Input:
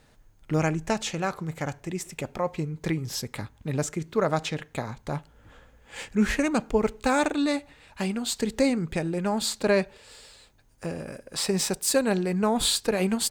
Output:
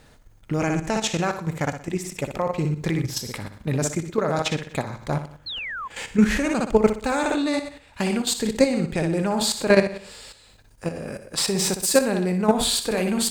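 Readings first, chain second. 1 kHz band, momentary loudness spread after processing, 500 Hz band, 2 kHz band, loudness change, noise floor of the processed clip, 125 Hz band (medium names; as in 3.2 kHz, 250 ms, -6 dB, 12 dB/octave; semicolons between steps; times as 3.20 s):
+3.0 dB, 11 LU, +4.0 dB, +4.0 dB, +3.5 dB, -53 dBFS, +4.0 dB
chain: flutter echo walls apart 10.4 m, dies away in 0.51 s; level held to a coarse grid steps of 10 dB; painted sound fall, 5.46–5.88 s, 980–4400 Hz -39 dBFS; trim +7.5 dB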